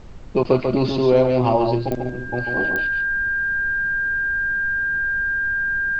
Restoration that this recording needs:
click removal
notch filter 1,600 Hz, Q 30
noise reduction from a noise print 30 dB
echo removal 142 ms −5 dB

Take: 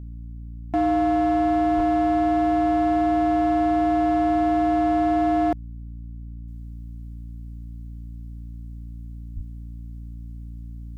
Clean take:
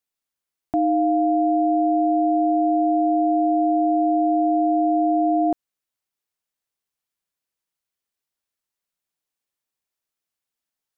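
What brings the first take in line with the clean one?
clipped peaks rebuilt −16.5 dBFS
hum removal 57.6 Hz, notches 5
0:01.76–0:01.88: high-pass filter 140 Hz 24 dB per octave
0:06.48: level correction −10.5 dB
0:09.35–0:09.47: high-pass filter 140 Hz 24 dB per octave

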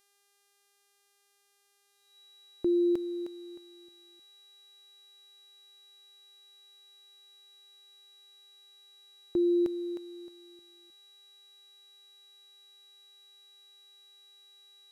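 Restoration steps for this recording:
hum removal 401.7 Hz, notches 31
notch filter 3,900 Hz, Q 30

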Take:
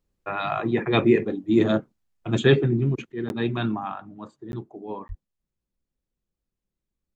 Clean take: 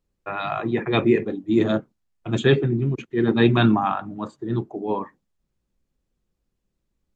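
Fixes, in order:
high-pass at the plosives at 0:05.08
repair the gap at 0:03.29/0:04.52/0:05.08, 11 ms
level correction +9 dB, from 0:03.12

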